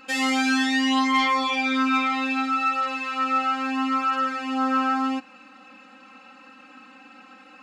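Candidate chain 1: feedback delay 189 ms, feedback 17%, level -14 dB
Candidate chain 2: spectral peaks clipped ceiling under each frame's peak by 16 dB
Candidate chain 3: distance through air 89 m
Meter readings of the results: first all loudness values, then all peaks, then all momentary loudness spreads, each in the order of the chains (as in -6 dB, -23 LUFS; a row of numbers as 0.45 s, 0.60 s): -22.5 LUFS, -22.5 LUFS, -23.5 LUFS; -11.0 dBFS, -10.0 dBFS, -12.5 dBFS; 6 LU, 6 LU, 5 LU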